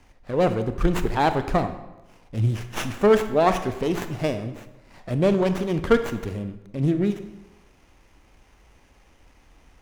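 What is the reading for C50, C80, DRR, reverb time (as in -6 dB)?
10.5 dB, 13.0 dB, 9.0 dB, 1.0 s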